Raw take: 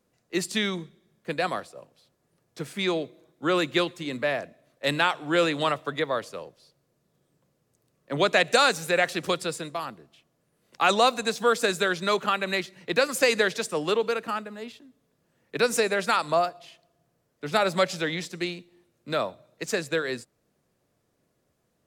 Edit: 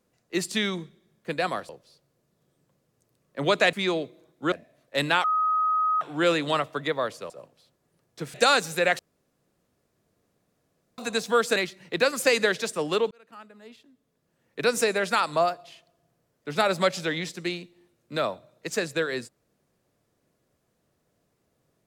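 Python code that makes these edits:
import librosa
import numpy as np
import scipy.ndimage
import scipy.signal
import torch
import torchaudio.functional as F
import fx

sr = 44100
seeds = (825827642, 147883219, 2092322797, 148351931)

y = fx.edit(x, sr, fx.swap(start_s=1.69, length_s=1.04, other_s=6.42, other_length_s=2.04),
    fx.cut(start_s=3.52, length_s=0.89),
    fx.insert_tone(at_s=5.13, length_s=0.77, hz=1260.0, db=-20.5),
    fx.room_tone_fill(start_s=9.11, length_s=1.99),
    fx.cut(start_s=11.68, length_s=0.84),
    fx.fade_in_span(start_s=14.07, length_s=1.63), tone=tone)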